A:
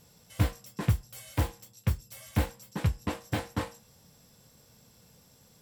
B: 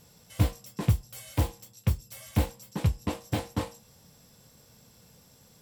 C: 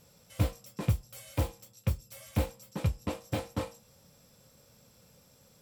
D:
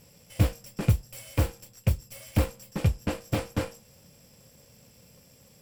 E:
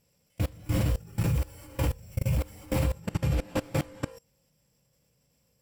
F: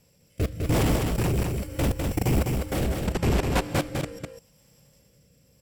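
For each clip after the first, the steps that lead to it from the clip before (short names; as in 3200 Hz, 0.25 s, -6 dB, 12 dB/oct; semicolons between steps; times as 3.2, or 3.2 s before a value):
dynamic EQ 1600 Hz, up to -7 dB, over -55 dBFS, Q 1.5; gain +2 dB
small resonant body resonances 550/1300/2400 Hz, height 8 dB; gain -4 dB
minimum comb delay 0.38 ms; gain +5.5 dB
non-linear reverb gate 0.49 s rising, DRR -7 dB; spectral noise reduction 6 dB; level quantiser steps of 23 dB; gain -1.5 dB
sine folder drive 11 dB, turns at -14.5 dBFS; rotary speaker horn 0.8 Hz; echo 0.203 s -4 dB; gain -3.5 dB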